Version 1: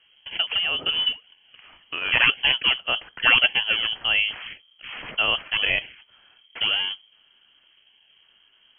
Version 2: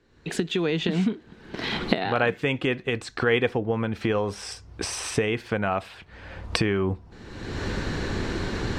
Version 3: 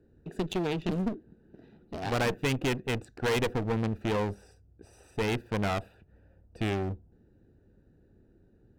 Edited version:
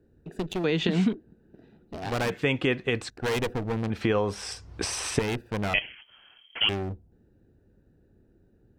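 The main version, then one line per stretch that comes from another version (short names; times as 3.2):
3
0.64–1.13 from 2
2.3–3.1 from 2
3.9–5.19 from 2
5.74–6.69 from 1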